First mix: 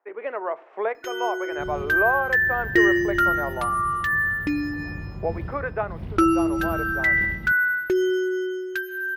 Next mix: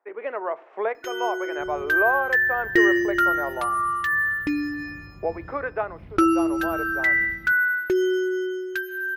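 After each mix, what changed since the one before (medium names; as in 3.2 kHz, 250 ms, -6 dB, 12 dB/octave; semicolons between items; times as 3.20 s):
second sound -10.5 dB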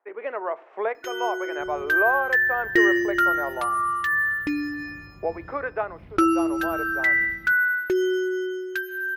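master: add bass shelf 240 Hz -3.5 dB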